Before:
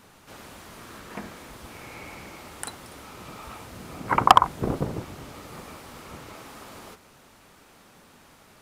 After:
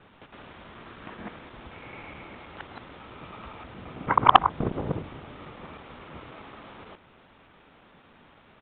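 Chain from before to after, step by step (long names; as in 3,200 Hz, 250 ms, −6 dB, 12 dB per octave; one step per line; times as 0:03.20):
reversed piece by piece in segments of 107 ms
downsampling to 8,000 Hz
level −1 dB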